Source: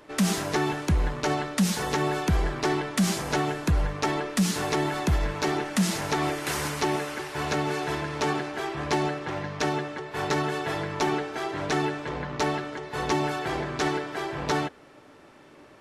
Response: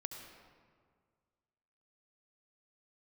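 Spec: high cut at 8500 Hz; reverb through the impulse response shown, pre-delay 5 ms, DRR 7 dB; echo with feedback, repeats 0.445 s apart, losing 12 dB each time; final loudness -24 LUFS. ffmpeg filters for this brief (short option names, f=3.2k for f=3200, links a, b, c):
-filter_complex "[0:a]lowpass=8.5k,aecho=1:1:445|890|1335:0.251|0.0628|0.0157,asplit=2[a][b];[1:a]atrim=start_sample=2205,adelay=5[c];[b][c]afir=irnorm=-1:irlink=0,volume=-5dB[d];[a][d]amix=inputs=2:normalize=0,volume=2.5dB"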